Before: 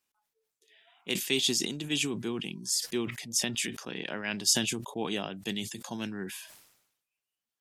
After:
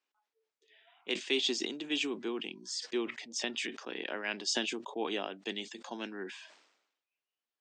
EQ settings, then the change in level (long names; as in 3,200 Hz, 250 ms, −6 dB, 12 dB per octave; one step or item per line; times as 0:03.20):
high-pass filter 280 Hz 24 dB per octave
Butterworth low-pass 8,900 Hz 96 dB per octave
high-frequency loss of the air 140 metres
0.0 dB